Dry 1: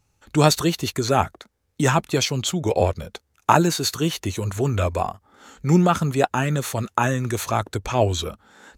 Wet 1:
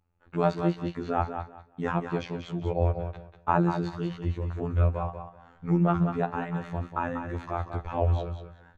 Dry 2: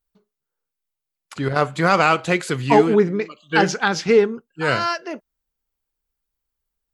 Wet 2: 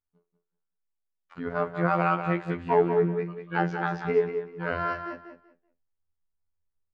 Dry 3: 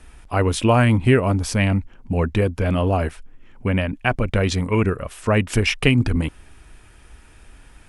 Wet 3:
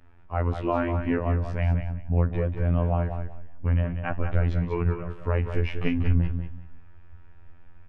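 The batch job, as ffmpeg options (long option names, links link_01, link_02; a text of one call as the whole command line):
ffmpeg -i in.wav -filter_complex "[0:a]lowpass=1600,asubboost=boost=3:cutoff=130,flanger=delay=7.6:depth=6:regen=-79:speed=1.2:shape=triangular,afftfilt=real='hypot(re,im)*cos(PI*b)':imag='0':win_size=2048:overlap=0.75,asplit=2[link_01][link_02];[link_02]aecho=0:1:191|382|573:0.398|0.0836|0.0176[link_03];[link_01][link_03]amix=inputs=2:normalize=0" out.wav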